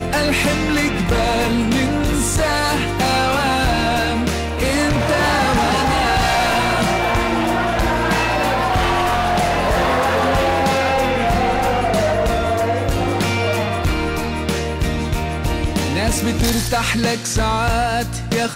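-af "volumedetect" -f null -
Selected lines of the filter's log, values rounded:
mean_volume: -17.5 dB
max_volume: -12.1 dB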